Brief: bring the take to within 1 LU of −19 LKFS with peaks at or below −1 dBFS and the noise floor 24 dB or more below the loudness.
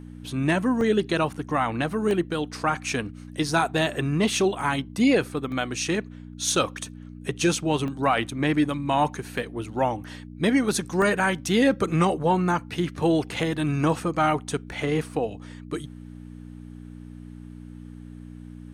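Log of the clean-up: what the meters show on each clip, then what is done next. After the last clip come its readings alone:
number of dropouts 8; longest dropout 1.2 ms; mains hum 60 Hz; hum harmonics up to 300 Hz; level of the hum −38 dBFS; integrated loudness −25.0 LKFS; sample peak −10.0 dBFS; target loudness −19.0 LKFS
→ repair the gap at 0:00.81/0:02.11/0:04.61/0:05.52/0:07.88/0:09.38/0:11.02/0:14.72, 1.2 ms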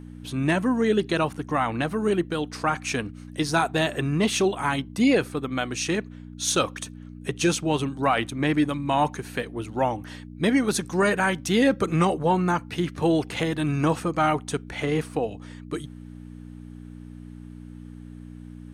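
number of dropouts 0; mains hum 60 Hz; hum harmonics up to 300 Hz; level of the hum −38 dBFS
→ hum removal 60 Hz, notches 5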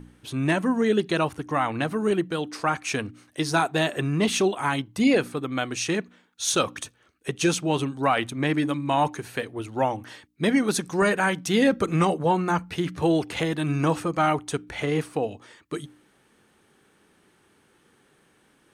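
mains hum none found; integrated loudness −25.0 LKFS; sample peak −9.0 dBFS; target loudness −19.0 LKFS
→ level +6 dB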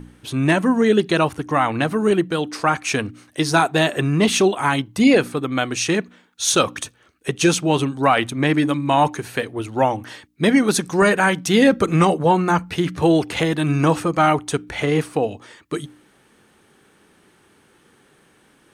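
integrated loudness −19.0 LKFS; sample peak −3.0 dBFS; background noise floor −57 dBFS

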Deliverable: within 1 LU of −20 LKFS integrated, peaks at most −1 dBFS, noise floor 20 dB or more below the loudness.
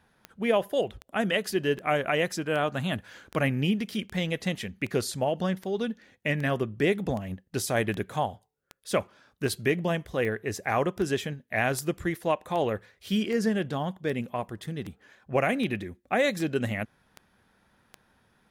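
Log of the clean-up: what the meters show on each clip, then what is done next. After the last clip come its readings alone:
number of clicks 24; integrated loudness −29.0 LKFS; sample peak −12.5 dBFS; target loudness −20.0 LKFS
→ click removal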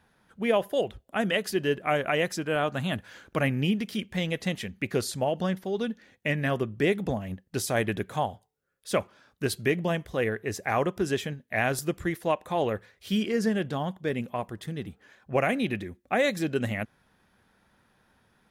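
number of clicks 0; integrated loudness −29.0 LKFS; sample peak −12.5 dBFS; target loudness −20.0 LKFS
→ level +9 dB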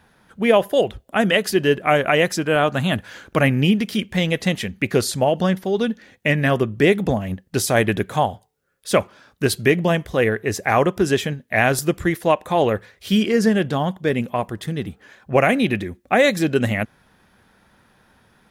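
integrated loudness −20.0 LKFS; sample peak −3.5 dBFS; background noise floor −59 dBFS

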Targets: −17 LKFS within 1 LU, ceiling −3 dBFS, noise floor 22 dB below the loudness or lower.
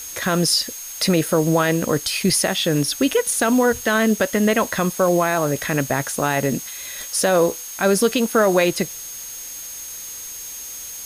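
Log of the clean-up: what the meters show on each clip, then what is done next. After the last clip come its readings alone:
interfering tone 6,500 Hz; level of the tone −34 dBFS; background noise floor −34 dBFS; target noise floor −42 dBFS; integrated loudness −19.5 LKFS; sample peak −7.0 dBFS; target loudness −17.0 LKFS
→ notch filter 6,500 Hz, Q 30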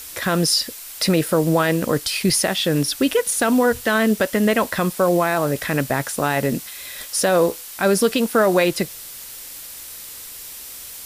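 interfering tone none found; background noise floor −37 dBFS; target noise floor −42 dBFS
→ broadband denoise 6 dB, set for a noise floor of −37 dBFS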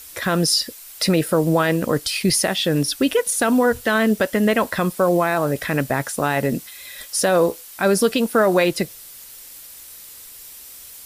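background noise floor −41 dBFS; target noise floor −42 dBFS
→ broadband denoise 6 dB, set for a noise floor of −41 dBFS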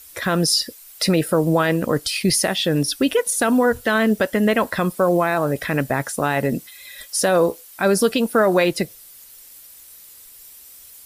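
background noise floor −44 dBFS; integrated loudness −19.5 LKFS; sample peak −7.0 dBFS; target loudness −17.0 LKFS
→ level +2.5 dB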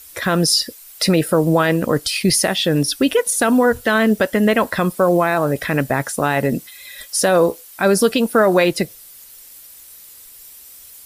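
integrated loudness −17.0 LKFS; sample peak −4.5 dBFS; background noise floor −42 dBFS

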